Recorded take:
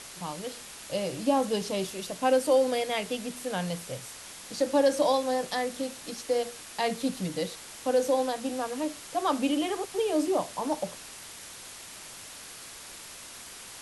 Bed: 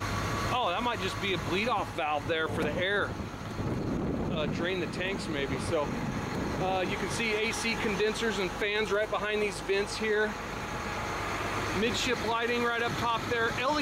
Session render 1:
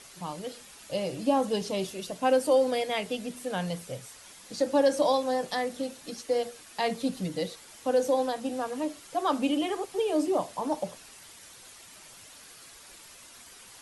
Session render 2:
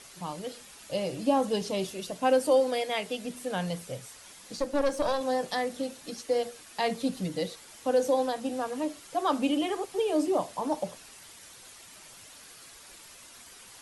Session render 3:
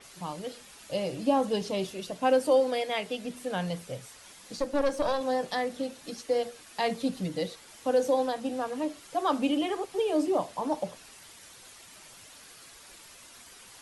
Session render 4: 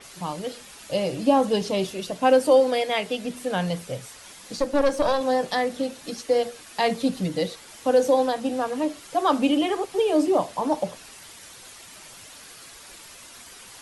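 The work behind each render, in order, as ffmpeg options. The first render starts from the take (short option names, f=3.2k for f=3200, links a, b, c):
-af "afftdn=nr=8:nf=-45"
-filter_complex "[0:a]asettb=1/sr,asplit=3[a][b][c];[a]atrim=end=2.604[d];[b]atrim=start=2.6:end=3.25,asetpts=PTS-STARTPTS,afade=t=in:d=0.004:c=qsin,afade=t=out:st=0.646:d=0.004:c=qsin,lowshelf=f=220:g=-7[e];[c]atrim=start=3.246[f];[d][e]acrossfade=d=0.004:c1=hsin:c2=qsin[g];[g][f]acrossfade=d=0.004:c1=qsin:c2=hsin,asettb=1/sr,asplit=3[h][i][j];[h]atrim=end=4.574[k];[i]atrim=start=4.57:end=5.21,asetpts=PTS-STARTPTS,afade=t=in:d=0.004:c=qsin,afade=t=out:st=0.636:d=0.004:c=qsin,aeval=exprs='(tanh(8.91*val(0)+0.7)-tanh(0.7))/8.91':c=same[l];[j]atrim=start=5.206[m];[k][l]acrossfade=d=0.004:c1=hsin:c2=qsin[n];[n][m]acrossfade=d=0.004:c1=qsin:c2=hsin"
-af "adynamicequalizer=threshold=0.00282:dfrequency=5400:dqfactor=0.7:tfrequency=5400:tqfactor=0.7:attack=5:release=100:ratio=0.375:range=2.5:mode=cutabove:tftype=highshelf"
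-af "volume=6dB"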